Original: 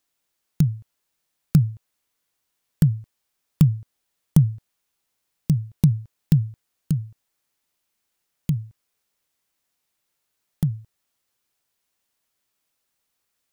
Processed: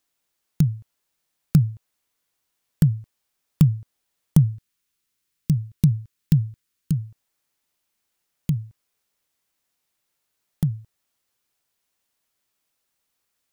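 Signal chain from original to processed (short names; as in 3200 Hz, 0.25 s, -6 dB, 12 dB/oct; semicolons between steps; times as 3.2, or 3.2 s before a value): 4.54–6.92 bell 700 Hz -13 dB 0.98 oct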